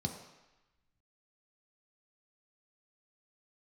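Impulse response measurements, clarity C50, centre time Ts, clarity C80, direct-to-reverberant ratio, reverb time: 7.0 dB, 26 ms, 9.0 dB, 2.5 dB, 1.0 s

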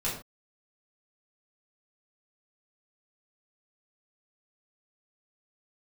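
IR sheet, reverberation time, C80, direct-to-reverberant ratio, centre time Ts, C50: no single decay rate, 9.5 dB, -7.5 dB, 35 ms, 5.0 dB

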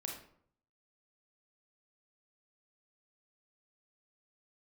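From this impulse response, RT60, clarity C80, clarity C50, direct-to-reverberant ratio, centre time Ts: 0.65 s, 9.0 dB, 4.0 dB, 0.5 dB, 33 ms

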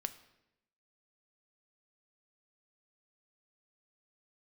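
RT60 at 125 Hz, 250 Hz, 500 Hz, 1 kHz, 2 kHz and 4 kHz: 1.0 s, 1.1 s, 0.95 s, 0.80 s, 0.85 s, 0.75 s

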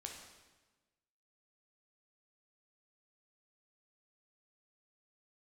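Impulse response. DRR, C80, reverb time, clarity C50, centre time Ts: 0.5 dB, 6.5 dB, 1.2 s, 4.0 dB, 45 ms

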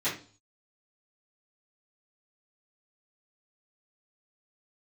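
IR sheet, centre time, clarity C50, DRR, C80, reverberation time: 27 ms, 7.5 dB, -14.0 dB, 13.5 dB, 0.40 s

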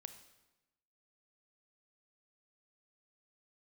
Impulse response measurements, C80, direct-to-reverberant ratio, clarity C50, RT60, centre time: 12.5 dB, 9.0 dB, 10.5 dB, 1.0 s, 12 ms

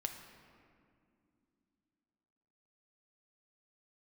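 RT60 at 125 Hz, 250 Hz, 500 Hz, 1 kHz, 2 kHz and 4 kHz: 3.2 s, 3.8 s, 2.8 s, 2.2 s, 1.9 s, 1.3 s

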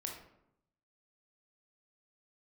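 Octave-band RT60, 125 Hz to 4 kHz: 1.1 s, 0.95 s, 0.80 s, 0.75 s, 0.60 s, 0.45 s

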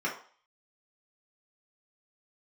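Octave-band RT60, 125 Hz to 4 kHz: 0.30 s, 0.35 s, 0.45 s, 0.50 s, 0.45 s, 0.50 s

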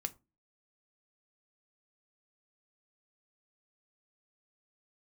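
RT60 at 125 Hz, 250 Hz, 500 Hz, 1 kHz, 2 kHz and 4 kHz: 0.40 s, 0.45 s, 0.30 s, 0.25 s, 0.20 s, 0.15 s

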